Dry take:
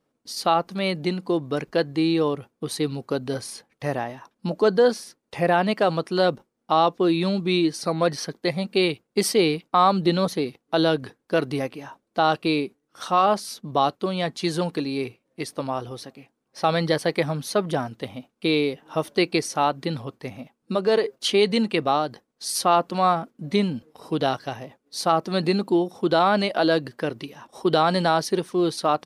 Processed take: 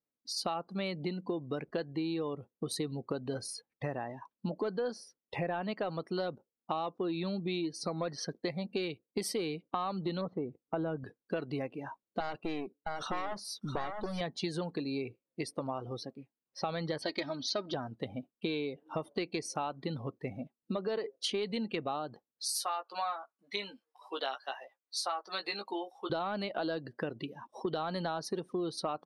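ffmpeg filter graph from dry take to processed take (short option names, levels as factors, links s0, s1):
-filter_complex "[0:a]asettb=1/sr,asplit=3[s0][s1][s2];[s0]atrim=end=10.214[s3];[s1]atrim=start=10.21:end=11.04,asetpts=PTS-STARTPTS,afade=t=in:d=0.004:c=qsin,afade=t=out:st=0.826:d=0.004:c=qsin,lowpass=1500,asubboost=boost=4.5:cutoff=250[s4];[s2]atrim=start=11.036[s5];[s3][s4]acrossfade=d=0.004:c1=hsin:c2=qsin[s6];[s6][s5]acrossfade=d=0.004:c1=qsin:c2=hsin,asettb=1/sr,asplit=3[s7][s8][s9];[s7]atrim=end=12.204[s10];[s8]atrim=start=12.2:end=14.21,asetpts=PTS-STARTPTS,afade=t=in:d=0.004:c=qsin,afade=t=out:st=2.006:d=0.004:c=qsin,aeval=exprs='clip(val(0),-1,0.0282)':c=same,aecho=1:1:663:0.422,atrim=end_sample=88641[s11];[s9]atrim=start=14.206[s12];[s10][s11]acrossfade=d=0.004:c1=hsin:c2=qsin[s13];[s13][s12]acrossfade=d=0.004:c1=qsin:c2=hsin,asettb=1/sr,asplit=3[s14][s15][s16];[s14]atrim=end=17.024[s17];[s15]atrim=start=17.02:end=17.74,asetpts=PTS-STARTPTS,afade=t=in:d=0.004:c=qsin,afade=t=out:st=0.716:d=0.004:c=qsin,lowpass=f=4700:t=q:w=2.8,bandreject=f=1100:w=18,aecho=1:1:3.2:0.71,atrim=end_sample=31752[s18];[s16]atrim=start=17.736[s19];[s17][s18]acrossfade=d=0.004:c1=hsin:c2=qsin[s20];[s20][s19]acrossfade=d=0.004:c1=qsin:c2=hsin,asettb=1/sr,asplit=3[s21][s22][s23];[s21]atrim=end=22.474[s24];[s22]atrim=start=22.47:end=26.1,asetpts=PTS-STARTPTS,afade=t=in:d=0.004:c=qsin,afade=t=out:st=3.626:d=0.004:c=qsin,highpass=860,asplit=2[s25][s26];[s26]adelay=15,volume=0.562[s27];[s25][s27]amix=inputs=2:normalize=0,atrim=end_sample=160083[s28];[s23]atrim=start=26.096[s29];[s24][s28]acrossfade=d=0.004:c1=hsin:c2=qsin[s30];[s30][s29]acrossfade=d=0.004:c1=qsin:c2=hsin,acontrast=67,afftdn=nr=21:nf=-33,acompressor=threshold=0.0631:ratio=6,volume=0.376"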